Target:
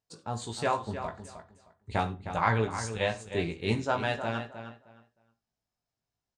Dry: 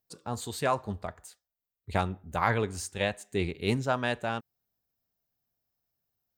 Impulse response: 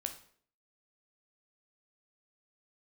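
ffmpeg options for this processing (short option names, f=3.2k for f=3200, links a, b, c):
-filter_complex "[0:a]lowpass=f=8.3k:w=0.5412,lowpass=f=8.3k:w=1.3066,equalizer=f=900:w=5.5:g=3.5,asplit=2[a][b];[b]adelay=310,lowpass=f=4k:p=1,volume=-10dB,asplit=2[c][d];[d]adelay=310,lowpass=f=4k:p=1,volume=0.21,asplit=2[e][f];[f]adelay=310,lowpass=f=4k:p=1,volume=0.21[g];[a][c][e][g]amix=inputs=4:normalize=0,asplit=2[h][i];[1:a]atrim=start_sample=2205,atrim=end_sample=3969,adelay=18[j];[i][j]afir=irnorm=-1:irlink=0,volume=-3.5dB[k];[h][k]amix=inputs=2:normalize=0,volume=-2dB"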